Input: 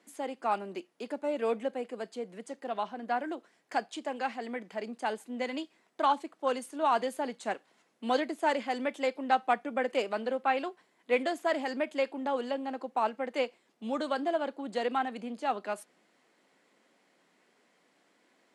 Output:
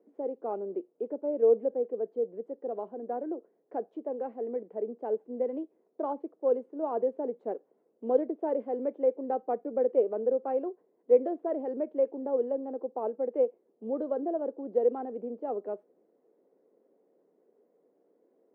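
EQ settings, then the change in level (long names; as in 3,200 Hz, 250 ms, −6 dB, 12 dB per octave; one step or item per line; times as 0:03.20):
high-pass filter 340 Hz 6 dB per octave
low-pass with resonance 450 Hz, resonance Q 3.7
0.0 dB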